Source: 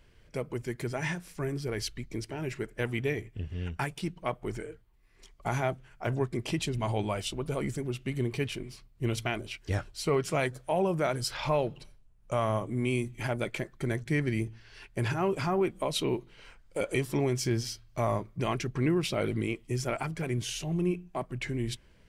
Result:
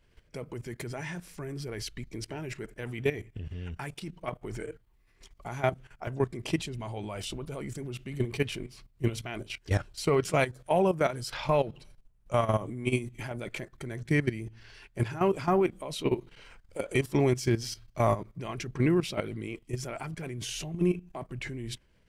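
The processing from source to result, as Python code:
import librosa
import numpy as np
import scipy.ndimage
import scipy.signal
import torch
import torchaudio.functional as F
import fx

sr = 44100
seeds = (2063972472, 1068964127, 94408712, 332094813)

y = fx.level_steps(x, sr, step_db=14)
y = y * librosa.db_to_amplitude(5.0)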